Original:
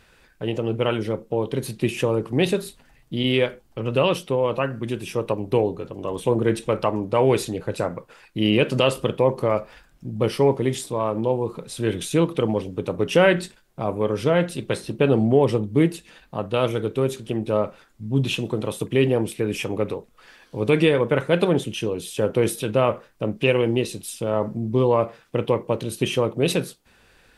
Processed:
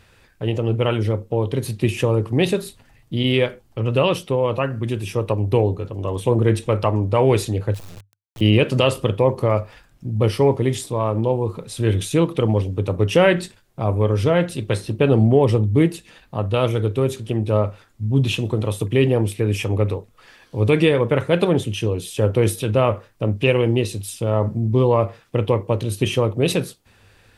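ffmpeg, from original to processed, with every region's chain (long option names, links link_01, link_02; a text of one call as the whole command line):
ffmpeg -i in.wav -filter_complex "[0:a]asettb=1/sr,asplit=3[link_01][link_02][link_03];[link_01]atrim=end=7.744[link_04];[link_02]atrim=start=7.74:end=8.41,asetpts=PTS-STARTPTS,afade=type=in:duration=0.004:curve=qsin,afade=type=out:start_time=0.666:duration=0.004:curve=qsin,acrusher=bits=3:dc=4:mix=0:aa=0.000001,acrossover=split=170|3000[link_05][link_06][link_07];[link_06]acompressor=threshold=-42dB:ratio=6:attack=3.2:release=140:knee=2.83:detection=peak[link_08];[link_05][link_08][link_07]amix=inputs=3:normalize=0,asoftclip=type=hard:threshold=-37.5dB[link_09];[link_03]atrim=start=8.406[link_10];[link_04][link_09]acrossfade=duration=0.004:curve1=hsin:curve2=qsin[link_11];[link_11][link_10]acrossfade=duration=0.004:curve1=qsin:curve2=hsin,equalizer=frequency=100:width_type=o:width=0.36:gain=14.5,bandreject=frequency=1500:width=23,volume=1.5dB" out.wav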